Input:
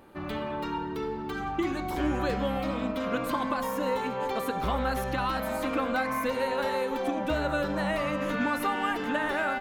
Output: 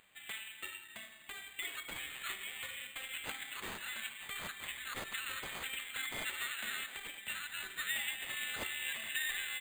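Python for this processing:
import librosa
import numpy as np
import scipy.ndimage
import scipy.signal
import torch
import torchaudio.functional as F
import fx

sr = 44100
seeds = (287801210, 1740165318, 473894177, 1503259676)

y = scipy.signal.sosfilt(scipy.signal.ellip(4, 1.0, 40, 1900.0, 'highpass', fs=sr, output='sos'), x)
y = np.repeat(y[::8], 8)[:len(y)]
y = y * 10.0 ** (1.0 / 20.0)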